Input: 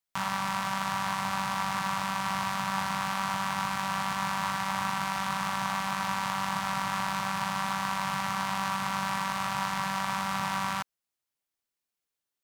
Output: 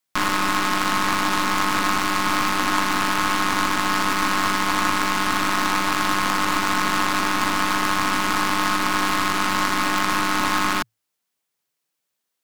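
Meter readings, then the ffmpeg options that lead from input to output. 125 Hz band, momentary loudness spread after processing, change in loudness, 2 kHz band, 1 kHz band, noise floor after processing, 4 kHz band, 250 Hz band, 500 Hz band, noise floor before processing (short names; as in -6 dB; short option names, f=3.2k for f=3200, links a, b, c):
+4.0 dB, 0 LU, +9.5 dB, +11.0 dB, +8.0 dB, -79 dBFS, +11.0 dB, +11.0 dB, +11.5 dB, under -85 dBFS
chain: -af "afreqshift=110,aeval=exprs='0.158*(cos(1*acos(clip(val(0)/0.158,-1,1)))-cos(1*PI/2))+0.0251*(cos(6*acos(clip(val(0)/0.158,-1,1)))-cos(6*PI/2))+0.0398*(cos(8*acos(clip(val(0)/0.158,-1,1)))-cos(8*PI/2))':c=same,volume=8.5dB"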